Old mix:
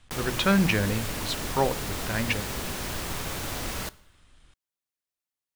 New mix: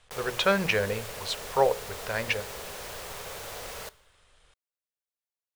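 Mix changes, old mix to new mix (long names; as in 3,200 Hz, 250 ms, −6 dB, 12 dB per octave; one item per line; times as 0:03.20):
background −6.0 dB
master: add low shelf with overshoot 370 Hz −7 dB, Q 3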